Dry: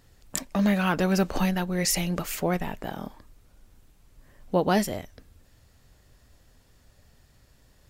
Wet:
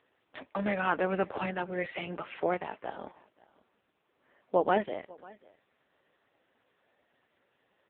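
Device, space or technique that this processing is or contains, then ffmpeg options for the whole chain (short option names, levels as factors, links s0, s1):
satellite phone: -af "highpass=380,lowpass=3200,aecho=1:1:543:0.0668" -ar 8000 -c:a libopencore_amrnb -b:a 5900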